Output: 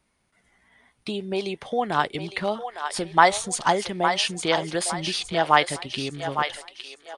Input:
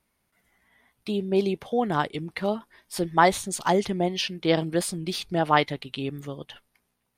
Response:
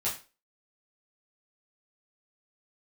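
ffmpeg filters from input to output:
-filter_complex "[0:a]acrossover=split=570[link_01][link_02];[link_01]acompressor=threshold=-34dB:ratio=6[link_03];[link_02]aecho=1:1:858|1716|2574|3432:0.447|0.156|0.0547|0.0192[link_04];[link_03][link_04]amix=inputs=2:normalize=0,aresample=22050,aresample=44100,volume=4dB"

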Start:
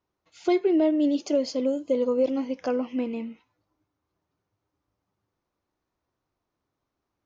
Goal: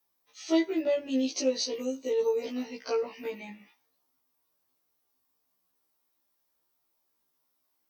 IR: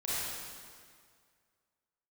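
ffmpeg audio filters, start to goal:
-af "aemphasis=mode=production:type=riaa,asetrate=40517,aresample=44100,afftfilt=real='re*1.73*eq(mod(b,3),0)':imag='im*1.73*eq(mod(b,3),0)':win_size=2048:overlap=0.75"

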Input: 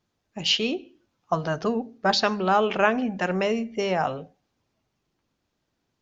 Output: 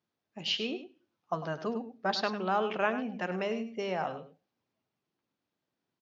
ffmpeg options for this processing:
ffmpeg -i in.wav -af "highpass=140,lowpass=5200,aecho=1:1:101:0.266,volume=-8.5dB" out.wav

